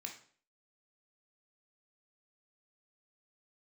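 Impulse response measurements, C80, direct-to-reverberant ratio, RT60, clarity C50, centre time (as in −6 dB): 13.0 dB, 1.5 dB, 0.50 s, 8.0 dB, 18 ms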